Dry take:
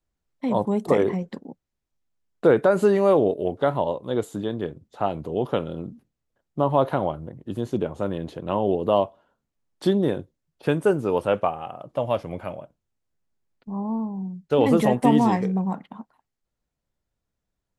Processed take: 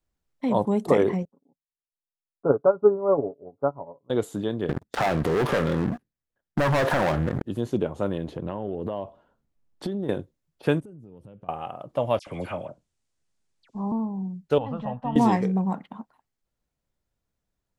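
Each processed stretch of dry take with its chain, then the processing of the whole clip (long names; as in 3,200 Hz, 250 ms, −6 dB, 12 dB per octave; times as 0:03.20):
0:01.25–0:04.10: Butterworth low-pass 1,400 Hz 96 dB per octave + comb filter 7.2 ms, depth 49% + expander for the loud parts 2.5 to 1, over −29 dBFS
0:04.69–0:07.44: leveller curve on the samples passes 5 + parametric band 1,700 Hz +7 dB 0.43 octaves + downward compressor 5 to 1, threshold −21 dBFS
0:08.28–0:10.09: spectral tilt −1.5 dB per octave + downward compressor 16 to 1, threshold −25 dBFS
0:10.80–0:11.49: drawn EQ curve 170 Hz 0 dB, 1,000 Hz −24 dB, 7,400 Hz −17 dB + downward compressor 16 to 1, threshold −41 dBFS
0:12.19–0:13.92: Butterworth low-pass 10,000 Hz + high-shelf EQ 2,500 Hz +9.5 dB + all-pass dispersion lows, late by 76 ms, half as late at 2,100 Hz
0:14.58–0:15.16: transistor ladder low-pass 2,900 Hz, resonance 45% + low-shelf EQ 90 Hz +10.5 dB + phaser with its sweep stopped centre 900 Hz, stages 4
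whole clip: no processing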